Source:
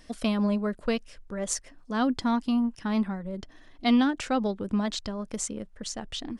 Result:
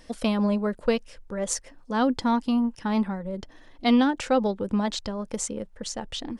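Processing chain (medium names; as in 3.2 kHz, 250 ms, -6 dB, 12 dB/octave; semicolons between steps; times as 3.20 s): small resonant body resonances 510/870 Hz, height 7 dB, ringing for 30 ms; trim +1.5 dB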